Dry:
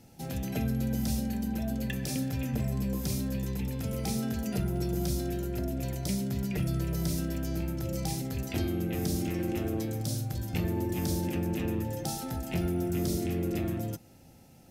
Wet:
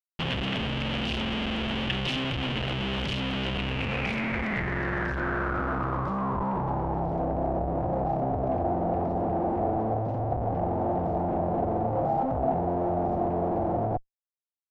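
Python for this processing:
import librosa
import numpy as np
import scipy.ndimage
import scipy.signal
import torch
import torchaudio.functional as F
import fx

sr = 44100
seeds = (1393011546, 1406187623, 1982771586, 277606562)

y = fx.schmitt(x, sr, flips_db=-43.5)
y = fx.filter_sweep_lowpass(y, sr, from_hz=3000.0, to_hz=720.0, start_s=3.54, end_s=7.27, q=5.9)
y = y * 10.0 ** (1.0 / 20.0)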